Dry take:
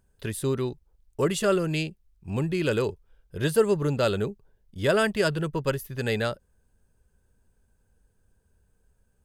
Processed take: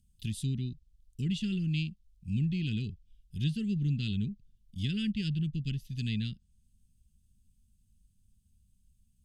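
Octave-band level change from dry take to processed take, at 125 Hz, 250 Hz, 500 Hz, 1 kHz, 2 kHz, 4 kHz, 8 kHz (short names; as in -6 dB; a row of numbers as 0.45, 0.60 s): -0.5 dB, -3.0 dB, -28.5 dB, under -40 dB, -14.5 dB, -5.5 dB, under -10 dB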